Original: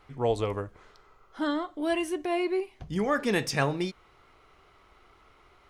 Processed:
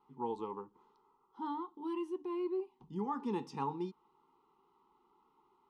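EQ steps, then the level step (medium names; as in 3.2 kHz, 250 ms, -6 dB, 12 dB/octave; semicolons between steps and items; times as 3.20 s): dynamic bell 1.2 kHz, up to +3 dB, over -36 dBFS, Q 0.8; vowel filter u; static phaser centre 450 Hz, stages 8; +7.0 dB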